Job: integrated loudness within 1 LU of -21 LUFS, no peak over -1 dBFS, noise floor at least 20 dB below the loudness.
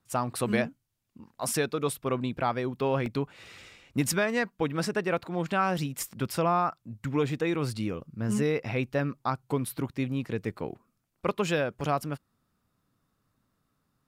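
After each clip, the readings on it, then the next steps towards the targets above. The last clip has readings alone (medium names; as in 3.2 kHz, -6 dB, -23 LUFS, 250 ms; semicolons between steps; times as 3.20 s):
dropouts 2; longest dropout 1.3 ms; loudness -30.0 LUFS; peak level -13.0 dBFS; loudness target -21.0 LUFS
-> interpolate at 3.06/11.81 s, 1.3 ms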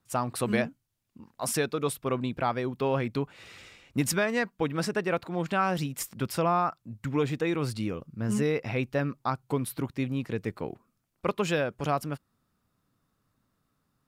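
dropouts 0; loudness -30.0 LUFS; peak level -13.0 dBFS; loudness target -21.0 LUFS
-> trim +9 dB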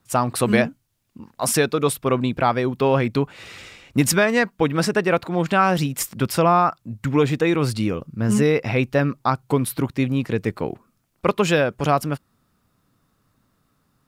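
loudness -21.0 LUFS; peak level -4.0 dBFS; noise floor -68 dBFS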